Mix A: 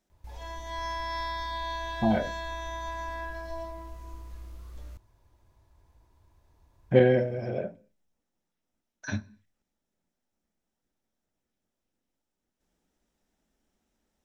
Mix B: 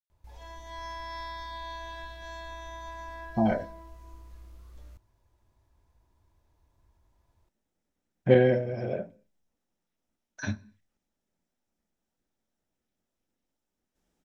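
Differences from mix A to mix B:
speech: entry +1.35 s; background -5.5 dB

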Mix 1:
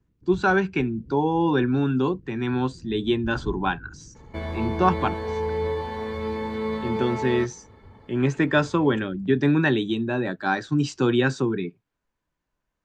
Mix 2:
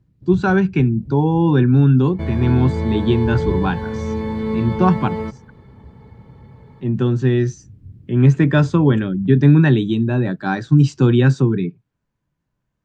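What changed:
first sound: remove steep low-pass 510 Hz 96 dB/oct; second sound: entry -2.15 s; master: add bell 130 Hz +14.5 dB 1.8 oct

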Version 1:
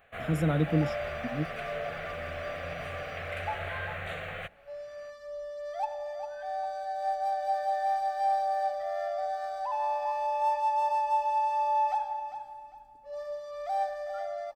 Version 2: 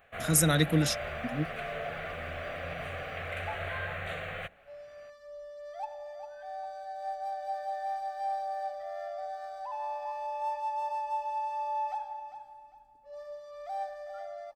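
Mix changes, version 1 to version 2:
speech: remove running mean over 21 samples; second sound -6.0 dB

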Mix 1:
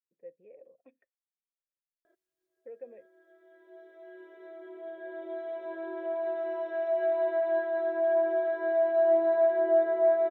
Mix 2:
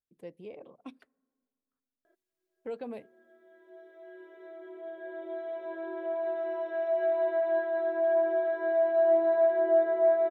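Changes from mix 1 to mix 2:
speech: remove vocal tract filter e; reverb: on, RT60 2.1 s

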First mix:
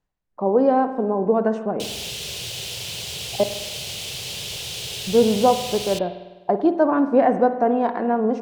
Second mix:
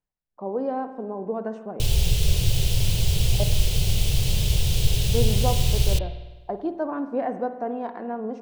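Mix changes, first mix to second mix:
speech -10.0 dB; background: remove weighting filter A

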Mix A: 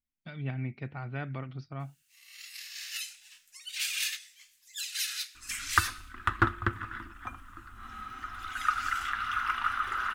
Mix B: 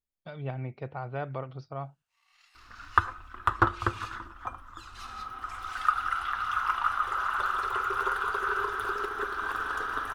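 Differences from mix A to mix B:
first sound: add band-pass 900 Hz, Q 1.3; second sound: entry -2.80 s; master: add graphic EQ 250/500/1000/2000 Hz -7/+10/+7/-7 dB

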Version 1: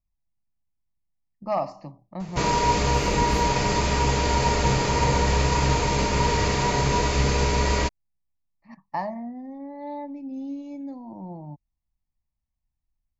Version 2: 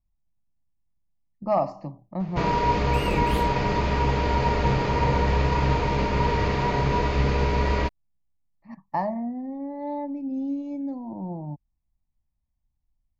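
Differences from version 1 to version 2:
speech: add tilt shelf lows +5 dB, about 1400 Hz; first sound: add air absorption 240 m; second sound +6.5 dB

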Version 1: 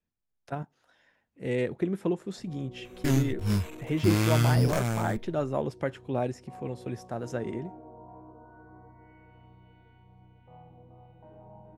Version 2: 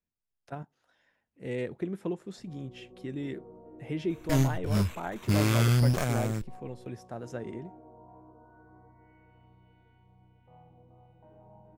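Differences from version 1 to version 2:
speech -5.0 dB; first sound -4.5 dB; second sound: entry +1.25 s

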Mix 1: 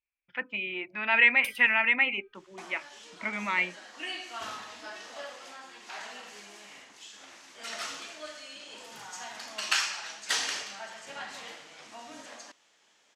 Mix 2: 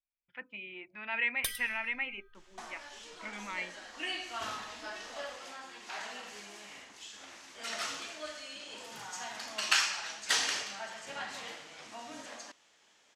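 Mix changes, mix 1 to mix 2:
speech -11.0 dB; first sound +7.5 dB; master: remove HPF 110 Hz 6 dB/oct

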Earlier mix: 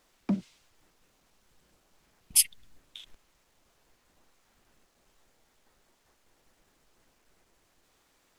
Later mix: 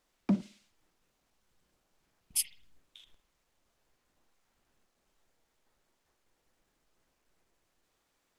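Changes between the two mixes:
speech -10.0 dB; reverb: on

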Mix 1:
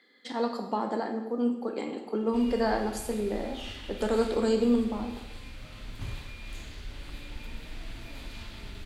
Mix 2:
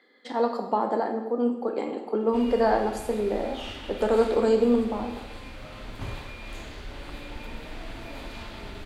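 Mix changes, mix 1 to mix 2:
speech -4.0 dB; master: add bell 660 Hz +10.5 dB 2.9 oct

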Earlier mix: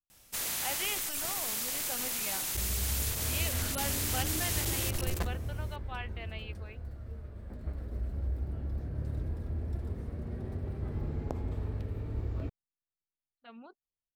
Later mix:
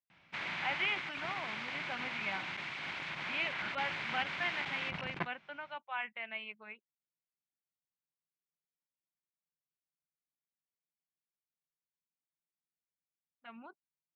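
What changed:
second sound: muted; master: add speaker cabinet 140–3200 Hz, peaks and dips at 160 Hz +8 dB, 250 Hz -3 dB, 470 Hz -9 dB, 980 Hz +4 dB, 1500 Hz +4 dB, 2200 Hz +8 dB

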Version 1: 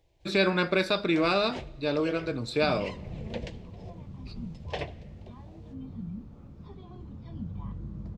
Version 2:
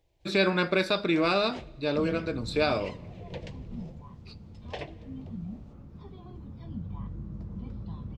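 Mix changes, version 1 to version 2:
first sound -3.5 dB; second sound: entry -0.65 s

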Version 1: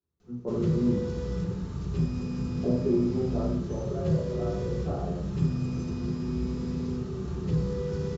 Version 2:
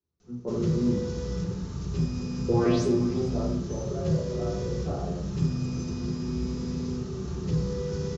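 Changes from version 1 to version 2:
second sound: unmuted; master: add synth low-pass 6200 Hz, resonance Q 2.7

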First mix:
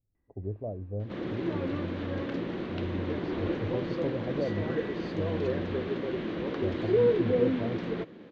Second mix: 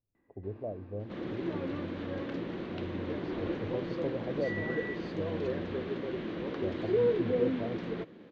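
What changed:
speech: add low shelf 190 Hz -9 dB; first sound +9.5 dB; second sound -3.5 dB

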